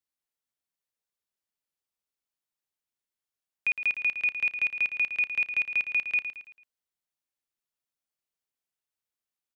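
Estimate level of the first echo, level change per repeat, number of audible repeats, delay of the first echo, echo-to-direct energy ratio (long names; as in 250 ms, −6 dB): −9.5 dB, −8.0 dB, 4, 111 ms, −8.5 dB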